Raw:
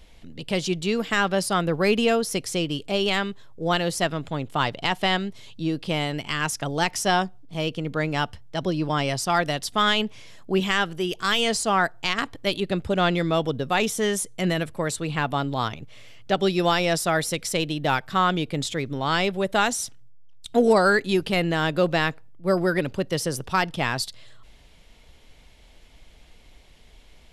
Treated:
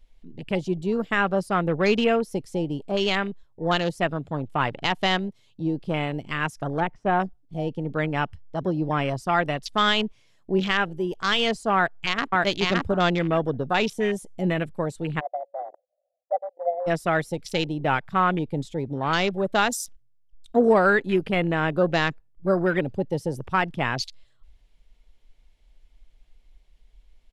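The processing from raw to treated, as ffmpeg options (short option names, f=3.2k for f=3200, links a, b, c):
-filter_complex "[0:a]asettb=1/sr,asplit=3[a][b][c];[a]atrim=end=6.804[d];[b]atrim=start=6.8:end=7.2,asetpts=PTS-STARTPTS,afade=t=in:d=0.004:c=qsin,afade=t=out:st=0.396:d=0.004:c=qsin,lowpass=1.5k[e];[c]atrim=start=7.196[f];[d][e]acrossfade=d=0.004:c1=hsin:c2=qsin[g];[g][f]acrossfade=d=0.004:c1=qsin:c2=hsin,asplit=2[h][i];[i]afade=t=in:st=11.75:d=0.01,afade=t=out:st=12.36:d=0.01,aecho=0:1:570|1140|1710:0.944061|0.141609|0.0212414[j];[h][j]amix=inputs=2:normalize=0,asplit=3[k][l][m];[k]afade=t=out:st=15.19:d=0.02[n];[l]asuperpass=centerf=630:order=20:qfactor=2.2,afade=t=in:st=15.19:d=0.02,afade=t=out:st=16.86:d=0.02[o];[m]afade=t=in:st=16.86:d=0.02[p];[n][o][p]amix=inputs=3:normalize=0,afwtdn=0.0282"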